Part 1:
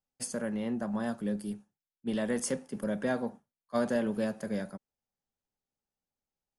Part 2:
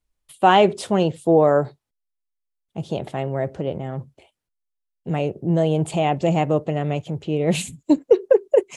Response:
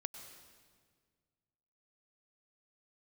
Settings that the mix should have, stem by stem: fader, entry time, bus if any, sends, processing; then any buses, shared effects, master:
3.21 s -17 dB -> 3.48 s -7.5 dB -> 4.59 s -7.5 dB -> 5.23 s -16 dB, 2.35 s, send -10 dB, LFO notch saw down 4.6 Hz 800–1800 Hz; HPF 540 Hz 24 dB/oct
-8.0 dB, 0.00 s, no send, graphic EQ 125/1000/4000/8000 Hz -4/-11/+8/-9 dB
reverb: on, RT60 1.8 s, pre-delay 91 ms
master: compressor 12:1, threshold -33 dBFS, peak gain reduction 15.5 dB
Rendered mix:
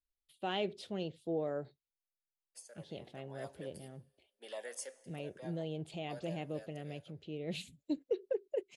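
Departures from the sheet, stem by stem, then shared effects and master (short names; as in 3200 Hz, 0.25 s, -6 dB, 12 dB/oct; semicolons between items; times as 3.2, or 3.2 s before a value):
stem 2 -8.0 dB -> -18.0 dB; master: missing compressor 12:1, threshold -33 dBFS, peak gain reduction 15.5 dB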